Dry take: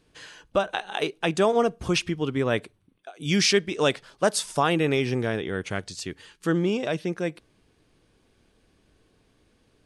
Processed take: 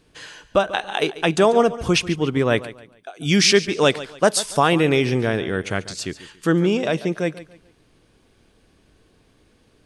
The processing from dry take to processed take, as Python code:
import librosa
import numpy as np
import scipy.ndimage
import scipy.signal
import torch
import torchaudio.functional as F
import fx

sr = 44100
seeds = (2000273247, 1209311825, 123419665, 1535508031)

y = fx.echo_feedback(x, sr, ms=142, feedback_pct=31, wet_db=-16.0)
y = y * librosa.db_to_amplitude(5.5)